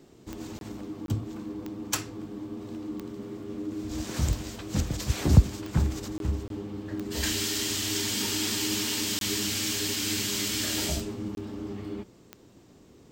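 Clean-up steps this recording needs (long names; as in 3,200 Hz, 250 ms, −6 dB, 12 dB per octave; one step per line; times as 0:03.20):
click removal
repair the gap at 0:00.59/0:01.06/0:06.18/0:06.48/0:09.19/0:11.35, 22 ms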